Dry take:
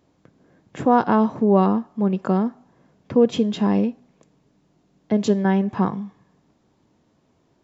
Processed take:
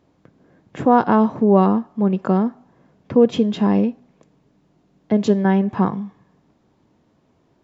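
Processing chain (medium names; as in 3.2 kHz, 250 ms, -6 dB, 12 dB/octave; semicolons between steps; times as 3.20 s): treble shelf 5.7 kHz -9 dB; trim +2.5 dB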